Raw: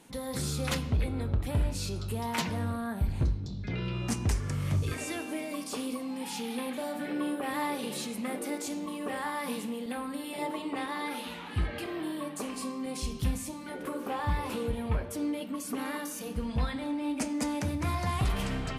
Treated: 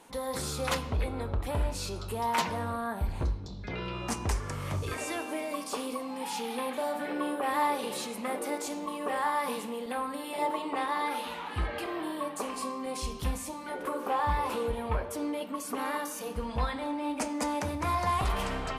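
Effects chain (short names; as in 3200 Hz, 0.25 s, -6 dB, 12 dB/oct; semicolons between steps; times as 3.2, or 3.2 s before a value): graphic EQ 125/250/500/1000 Hz -8/-3/+3/+7 dB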